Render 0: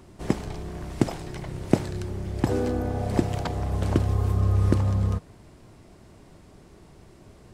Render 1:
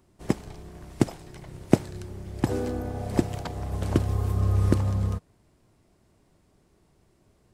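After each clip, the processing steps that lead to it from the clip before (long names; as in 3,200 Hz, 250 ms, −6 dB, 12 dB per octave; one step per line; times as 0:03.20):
high-shelf EQ 8,900 Hz +7 dB
expander for the loud parts 1.5 to 1, over −44 dBFS
level +1.5 dB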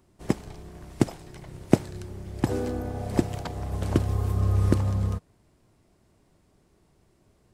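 no processing that can be heard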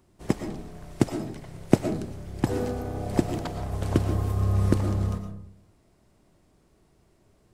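comb and all-pass reverb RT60 0.63 s, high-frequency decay 0.35×, pre-delay 75 ms, DRR 6.5 dB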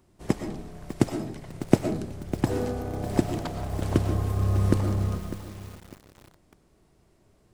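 feedback echo at a low word length 601 ms, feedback 35%, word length 6 bits, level −12.5 dB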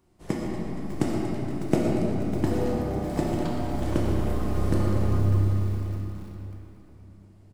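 on a send: repeating echo 235 ms, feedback 58%, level −12.5 dB
on the sum: rectangular room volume 120 cubic metres, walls hard, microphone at 0.61 metres
level −5 dB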